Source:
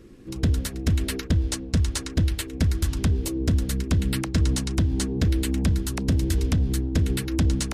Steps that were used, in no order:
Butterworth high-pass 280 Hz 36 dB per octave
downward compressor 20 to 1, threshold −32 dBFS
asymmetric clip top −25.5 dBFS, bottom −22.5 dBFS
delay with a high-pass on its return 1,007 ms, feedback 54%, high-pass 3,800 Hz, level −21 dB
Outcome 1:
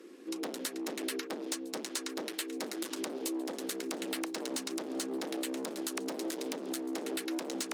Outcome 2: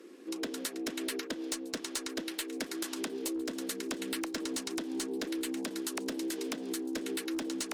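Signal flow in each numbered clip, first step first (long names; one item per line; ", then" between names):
asymmetric clip, then Butterworth high-pass, then downward compressor, then delay with a high-pass on its return
Butterworth high-pass, then asymmetric clip, then downward compressor, then delay with a high-pass on its return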